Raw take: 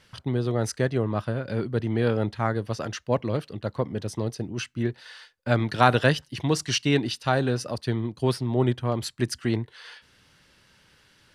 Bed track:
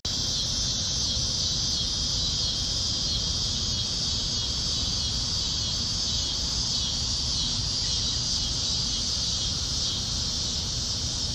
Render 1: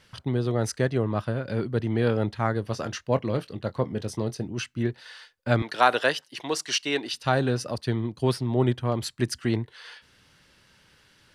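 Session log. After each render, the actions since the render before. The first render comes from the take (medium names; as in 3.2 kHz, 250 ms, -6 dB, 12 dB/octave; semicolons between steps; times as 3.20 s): 2.61–4.48 s: doubling 23 ms -13 dB; 5.62–7.14 s: high-pass 430 Hz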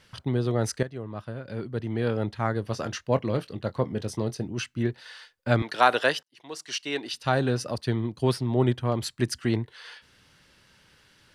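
0.83–2.85 s: fade in, from -13.5 dB; 6.23–7.76 s: fade in equal-power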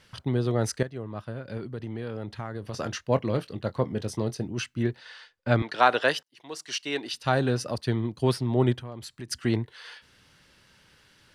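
1.57–2.74 s: compression, threshold -30 dBFS; 4.98–6.08 s: distance through air 66 m; 8.80–9.31 s: compression 2.5:1, threshold -41 dBFS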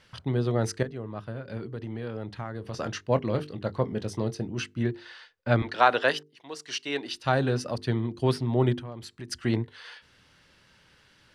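treble shelf 8.7 kHz -9.5 dB; hum notches 50/100/150/200/250/300/350/400/450 Hz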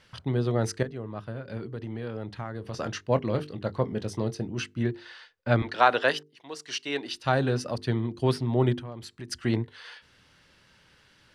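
no audible change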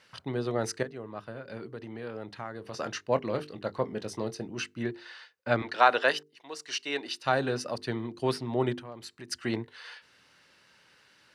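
high-pass 360 Hz 6 dB/octave; band-stop 3.3 kHz, Q 14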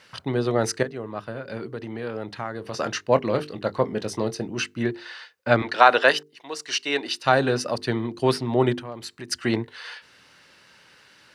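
trim +7.5 dB; peak limiter -1 dBFS, peak gain reduction 2 dB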